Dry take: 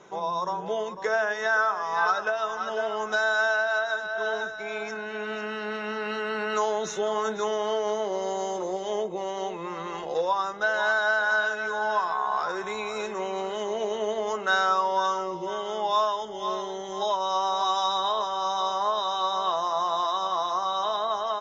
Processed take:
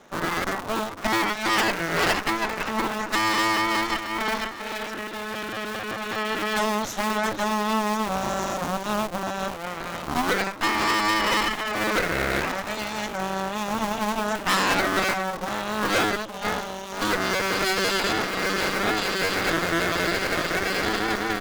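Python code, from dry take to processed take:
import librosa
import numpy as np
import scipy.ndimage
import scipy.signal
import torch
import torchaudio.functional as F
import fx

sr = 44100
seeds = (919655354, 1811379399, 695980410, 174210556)

y = fx.cycle_switch(x, sr, every=2, mode='inverted')
y = fx.cheby_harmonics(y, sr, harmonics=(8,), levels_db=(-13,), full_scale_db=-11.0)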